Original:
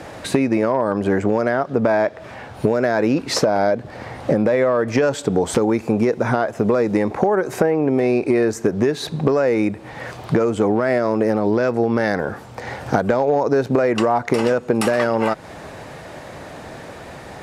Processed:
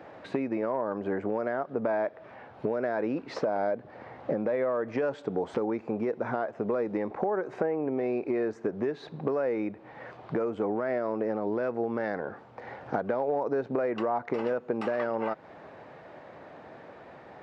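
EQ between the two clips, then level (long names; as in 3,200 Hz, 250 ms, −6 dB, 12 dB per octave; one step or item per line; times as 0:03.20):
high-pass filter 390 Hz 6 dB per octave
head-to-tape spacing loss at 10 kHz 35 dB
−7.0 dB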